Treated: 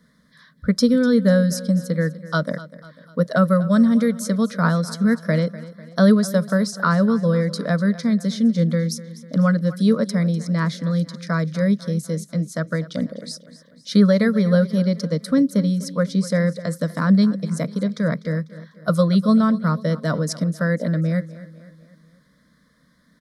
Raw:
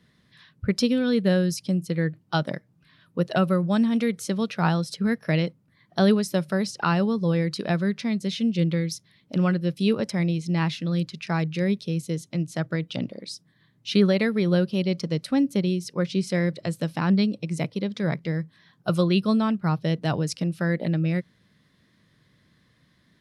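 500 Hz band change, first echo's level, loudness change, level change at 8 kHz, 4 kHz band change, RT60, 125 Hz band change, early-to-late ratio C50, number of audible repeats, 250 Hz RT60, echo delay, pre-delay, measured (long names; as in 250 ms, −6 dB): +4.5 dB, −17.0 dB, +5.0 dB, +5.0 dB, 0.0 dB, no reverb audible, +4.5 dB, no reverb audible, 3, no reverb audible, 248 ms, no reverb audible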